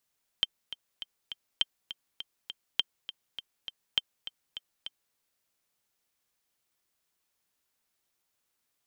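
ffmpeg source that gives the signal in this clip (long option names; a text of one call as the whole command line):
ffmpeg -f lavfi -i "aevalsrc='pow(10,(-11-13.5*gte(mod(t,4*60/203),60/203))/20)*sin(2*PI*3140*mod(t,60/203))*exp(-6.91*mod(t,60/203)/0.03)':duration=4.72:sample_rate=44100" out.wav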